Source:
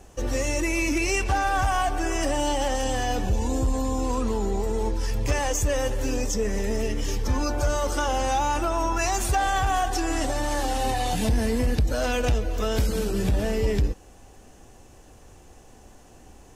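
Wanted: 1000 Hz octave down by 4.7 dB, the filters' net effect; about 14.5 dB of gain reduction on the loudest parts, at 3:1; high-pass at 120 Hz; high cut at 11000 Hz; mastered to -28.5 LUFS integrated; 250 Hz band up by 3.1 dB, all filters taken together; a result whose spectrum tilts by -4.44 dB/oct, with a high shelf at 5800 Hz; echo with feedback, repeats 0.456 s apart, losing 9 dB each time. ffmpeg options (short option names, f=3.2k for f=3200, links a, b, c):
-af "highpass=120,lowpass=11k,equalizer=f=250:t=o:g=4.5,equalizer=f=1k:t=o:g=-7,highshelf=f=5.8k:g=-4,acompressor=threshold=-41dB:ratio=3,aecho=1:1:456|912|1368|1824:0.355|0.124|0.0435|0.0152,volume=10.5dB"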